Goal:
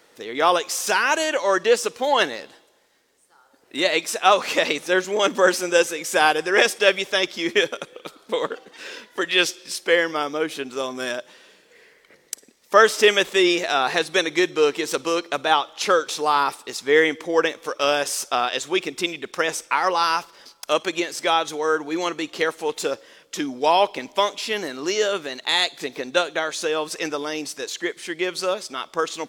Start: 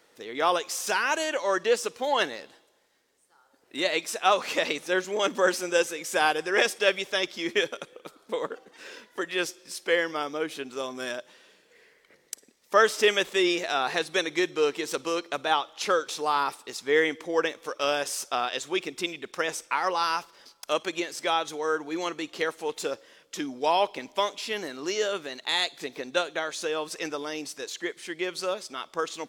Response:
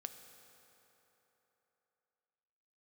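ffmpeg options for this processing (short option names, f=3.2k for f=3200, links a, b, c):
-filter_complex "[0:a]asplit=3[a][b][c];[a]afade=t=out:st=7.94:d=0.02[d];[b]adynamicequalizer=threshold=0.00501:dfrequency=3400:dqfactor=1:tfrequency=3400:tqfactor=1:attack=5:release=100:ratio=0.375:range=4:mode=boostabove:tftype=bell,afade=t=in:st=7.94:d=0.02,afade=t=out:st=9.75:d=0.02[e];[c]afade=t=in:st=9.75:d=0.02[f];[d][e][f]amix=inputs=3:normalize=0,volume=6dB"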